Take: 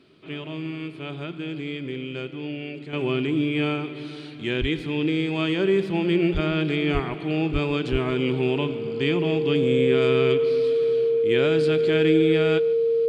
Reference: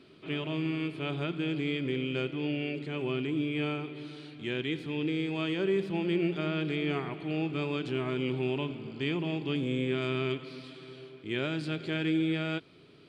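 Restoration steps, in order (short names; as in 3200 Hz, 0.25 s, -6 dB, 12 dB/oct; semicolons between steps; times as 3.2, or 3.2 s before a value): notch 460 Hz, Q 30; de-plosive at 4.6/6.33/6.93/7.52/7.91; inverse comb 0.152 s -21.5 dB; gain 0 dB, from 2.93 s -7.5 dB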